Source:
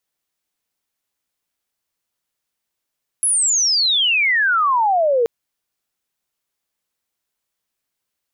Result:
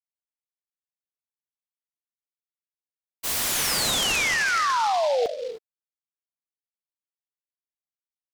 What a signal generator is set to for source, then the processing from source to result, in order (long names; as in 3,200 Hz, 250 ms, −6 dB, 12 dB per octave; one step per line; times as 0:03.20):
glide logarithmic 11,000 Hz → 450 Hz −14 dBFS → −13 dBFS 2.03 s
downward expander −11 dBFS
reverb whose tail is shaped and stops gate 330 ms rising, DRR 8.5 dB
short delay modulated by noise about 3,400 Hz, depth 0.038 ms